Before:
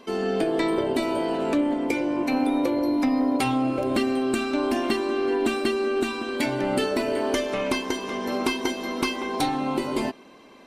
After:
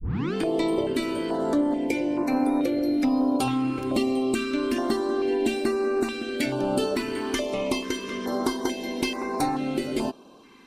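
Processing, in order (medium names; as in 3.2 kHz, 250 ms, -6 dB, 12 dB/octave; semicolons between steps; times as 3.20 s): tape start-up on the opening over 0.34 s; step-sequenced notch 2.3 Hz 610–3200 Hz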